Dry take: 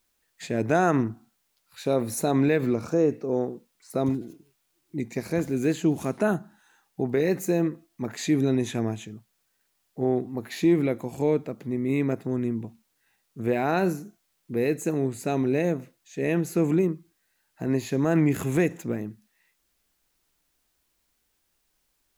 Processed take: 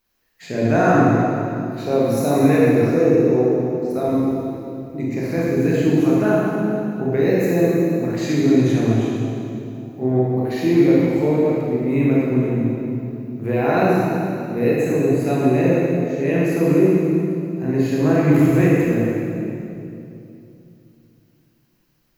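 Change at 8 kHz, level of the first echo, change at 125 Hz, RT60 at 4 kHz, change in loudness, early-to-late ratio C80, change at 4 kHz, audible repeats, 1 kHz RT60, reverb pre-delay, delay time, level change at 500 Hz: n/a, none, +9.5 dB, 2.2 s, +8.0 dB, -1.5 dB, +4.5 dB, none, 2.6 s, 22 ms, none, +8.5 dB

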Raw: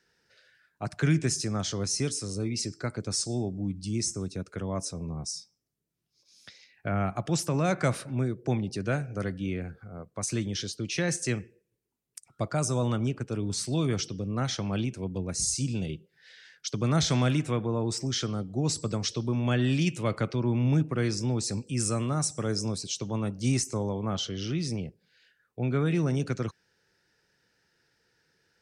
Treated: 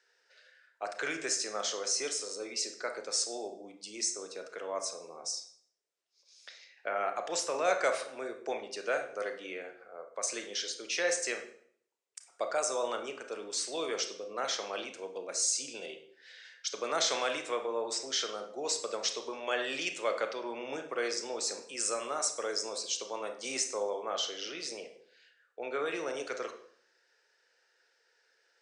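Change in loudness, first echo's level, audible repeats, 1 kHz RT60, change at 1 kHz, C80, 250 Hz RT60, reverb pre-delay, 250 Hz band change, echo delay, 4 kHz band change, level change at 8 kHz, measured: -4.5 dB, none, none, 0.60 s, +0.5 dB, 13.5 dB, 0.60 s, 26 ms, -17.0 dB, none, 0.0 dB, -0.5 dB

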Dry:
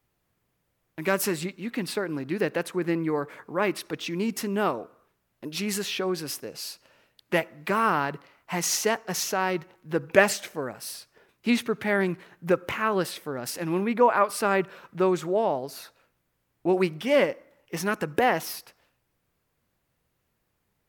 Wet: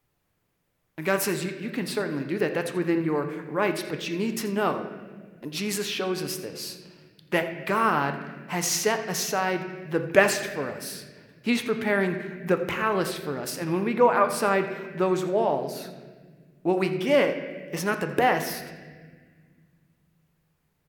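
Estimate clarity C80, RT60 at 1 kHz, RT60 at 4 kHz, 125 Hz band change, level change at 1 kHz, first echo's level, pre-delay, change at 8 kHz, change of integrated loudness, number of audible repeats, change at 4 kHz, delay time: 9.5 dB, 1.4 s, 1.3 s, +1.5 dB, +0.5 dB, -16.0 dB, 7 ms, +0.5 dB, +0.5 dB, 1, +0.5 dB, 84 ms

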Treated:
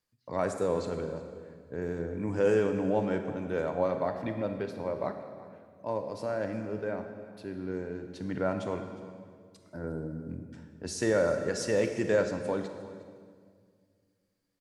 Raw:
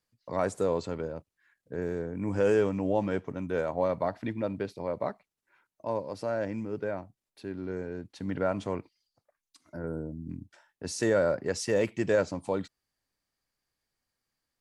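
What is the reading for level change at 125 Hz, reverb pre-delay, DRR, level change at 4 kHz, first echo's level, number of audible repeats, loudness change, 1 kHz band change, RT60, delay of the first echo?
-0.5 dB, 24 ms, 6.0 dB, -0.5 dB, -19.0 dB, 1, -0.5 dB, -1.0 dB, 1.9 s, 0.358 s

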